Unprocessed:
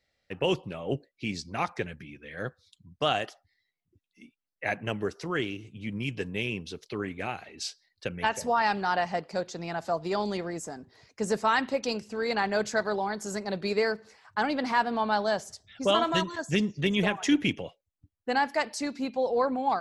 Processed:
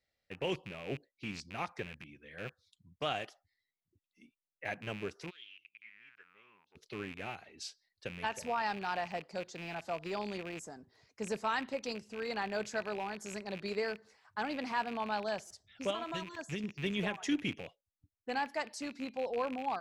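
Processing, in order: rattling part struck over -42 dBFS, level -26 dBFS; 5.29–6.75 band-pass 3900 Hz -> 810 Hz, Q 7.9; 15.9–16.64 compressor, threshold -26 dBFS, peak gain reduction 7 dB; stuck buffer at 15.47, samples 256, times 5; gain -9 dB

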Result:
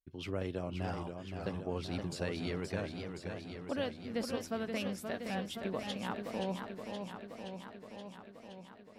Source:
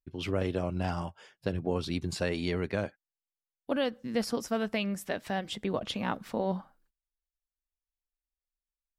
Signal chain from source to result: warbling echo 0.523 s, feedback 71%, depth 135 cents, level -6 dB; gain -7 dB

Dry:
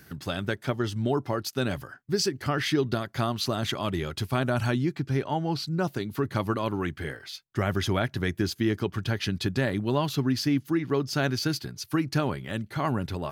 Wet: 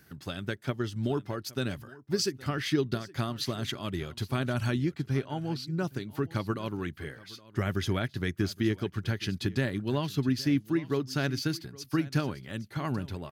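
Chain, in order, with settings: dynamic EQ 800 Hz, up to -6 dB, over -40 dBFS, Q 1; echo 0.818 s -17 dB; upward expander 1.5:1, over -35 dBFS

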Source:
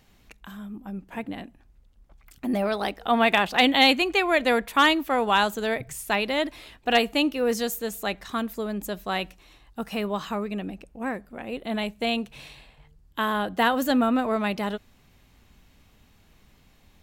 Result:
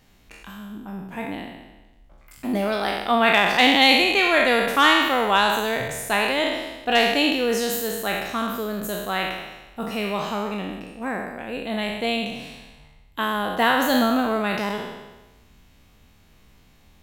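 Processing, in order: spectral trails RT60 1.15 s

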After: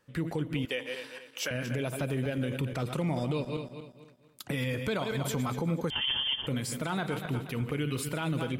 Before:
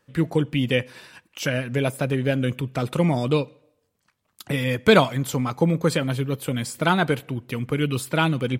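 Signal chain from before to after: regenerating reverse delay 0.119 s, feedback 58%, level -11 dB; 0.65–1.51 HPF 460 Hz 12 dB/oct; compressor 5:1, threshold -22 dBFS, peak gain reduction 11.5 dB; limiter -19 dBFS, peak gain reduction 9.5 dB; 5.9–6.47 inverted band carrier 3300 Hz; gain -3 dB

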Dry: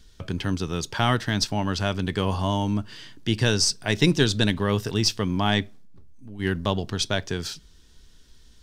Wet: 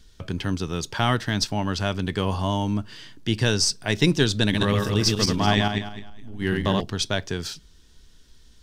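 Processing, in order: 4.42–6.82 regenerating reverse delay 0.105 s, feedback 49%, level -2 dB

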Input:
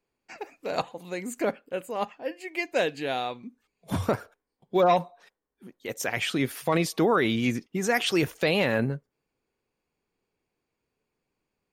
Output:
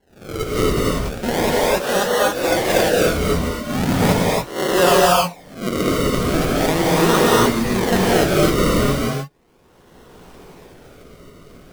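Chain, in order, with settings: spectral swells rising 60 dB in 0.61 s; recorder AGC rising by 26 dB/s; 0.7–1.23 HPF 690 Hz 24 dB/oct; decimation with a swept rate 36×, swing 100% 0.38 Hz; non-linear reverb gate 0.31 s rising, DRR -4 dB; gain +1.5 dB

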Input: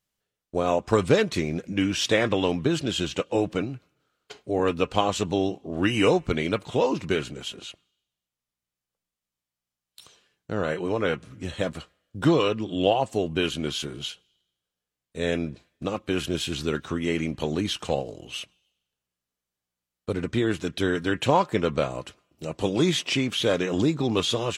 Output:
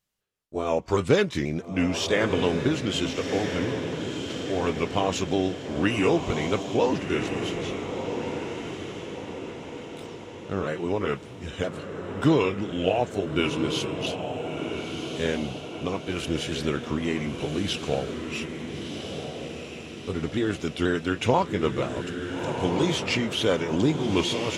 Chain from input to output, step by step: repeated pitch sweeps -2 st, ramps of 0.485 s; diffused feedback echo 1.357 s, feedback 52%, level -6 dB

